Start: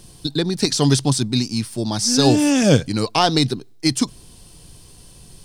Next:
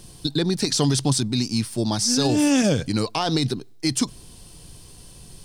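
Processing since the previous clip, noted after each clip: limiter -11.5 dBFS, peak gain reduction 10 dB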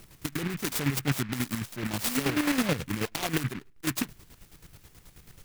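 chopper 9.3 Hz, depth 60%, duty 40%; noise-modulated delay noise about 1700 Hz, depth 0.23 ms; gain -5 dB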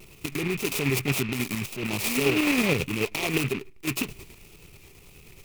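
transient shaper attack -3 dB, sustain +6 dB; thirty-one-band EQ 400 Hz +10 dB, 1600 Hz -9 dB, 2500 Hz +12 dB; vibrato 1.8 Hz 54 cents; gain +1.5 dB

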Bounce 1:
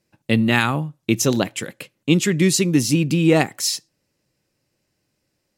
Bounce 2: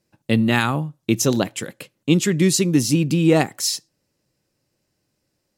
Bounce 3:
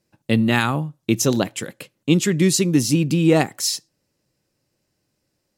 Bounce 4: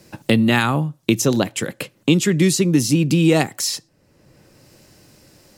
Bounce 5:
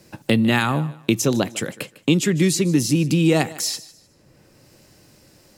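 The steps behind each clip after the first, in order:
bell 2300 Hz -3.5 dB 0.91 oct
nothing audible
three-band squash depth 70%; gain +1.5 dB
thinning echo 0.152 s, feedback 29%, high-pass 230 Hz, level -18 dB; gain -2 dB

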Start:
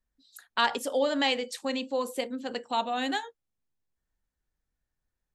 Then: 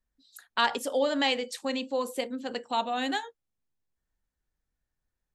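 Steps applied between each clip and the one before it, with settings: nothing audible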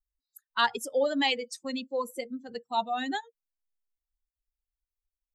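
per-bin expansion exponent 2; gain +2.5 dB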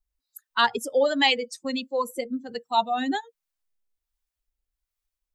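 harmonic tremolo 1.3 Hz, depth 50%, crossover 620 Hz; gain +7.5 dB

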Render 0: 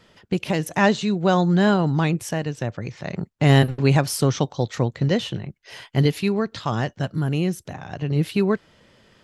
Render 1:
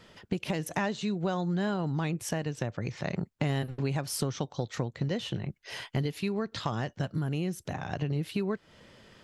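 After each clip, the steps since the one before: compressor 6:1, threshold -28 dBFS, peak gain reduction 16 dB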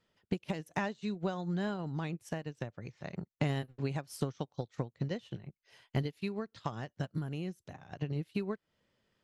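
upward expander 2.5:1, over -40 dBFS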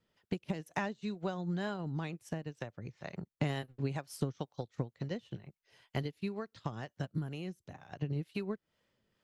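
harmonic tremolo 2.1 Hz, depth 50%, crossover 450 Hz; gain +1 dB

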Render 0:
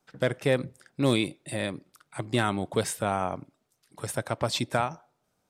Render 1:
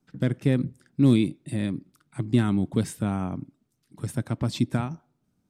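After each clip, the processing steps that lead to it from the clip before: resonant low shelf 380 Hz +12 dB, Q 1.5; gain -6 dB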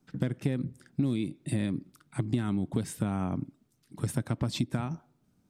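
compressor 10:1, threshold -28 dBFS, peak gain reduction 15 dB; gain +3 dB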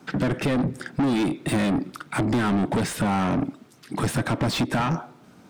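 overdrive pedal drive 35 dB, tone 2000 Hz, clips at -14 dBFS

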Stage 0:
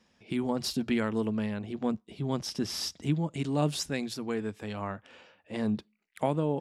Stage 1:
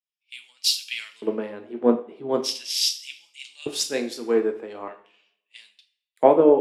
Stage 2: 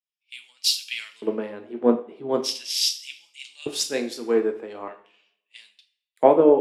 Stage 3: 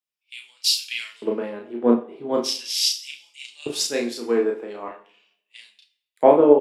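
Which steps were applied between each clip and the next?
LFO high-pass square 0.41 Hz 380–2600 Hz; two-slope reverb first 0.55 s, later 1.8 s, from -16 dB, DRR 5 dB; three-band expander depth 100%; gain +2.5 dB
nothing audible
doubler 34 ms -3.5 dB

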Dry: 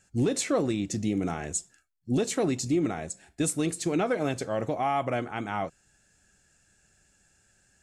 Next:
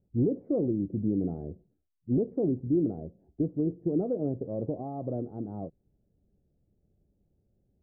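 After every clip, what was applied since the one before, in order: inverse Chebyshev low-pass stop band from 3000 Hz, stop band 80 dB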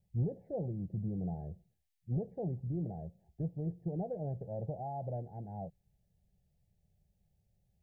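EQ curve 180 Hz 0 dB, 270 Hz -20 dB, 840 Hz +5 dB, 1200 Hz -27 dB, 1700 Hz +7 dB; gain -2 dB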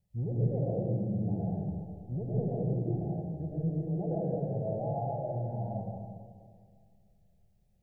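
digital reverb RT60 2 s, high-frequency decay 0.3×, pre-delay 65 ms, DRR -6 dB; gain -2 dB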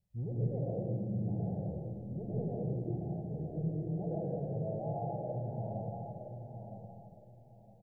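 feedback echo 0.963 s, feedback 25%, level -7.5 dB; gain -4.5 dB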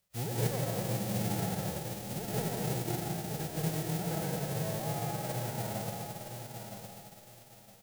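spectral whitening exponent 0.3; gain +2 dB

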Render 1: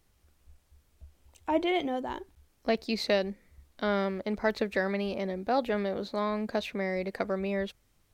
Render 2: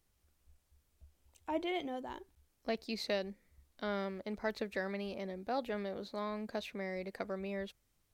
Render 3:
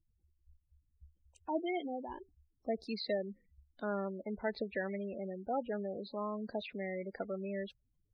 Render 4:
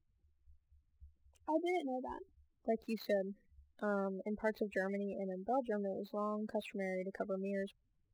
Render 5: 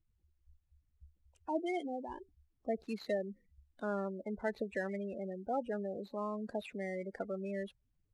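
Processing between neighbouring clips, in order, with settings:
high shelf 5000 Hz +4.5 dB; gain -9 dB
spectral gate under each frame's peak -15 dB strong; gain +1 dB
median filter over 9 samples
steep low-pass 11000 Hz

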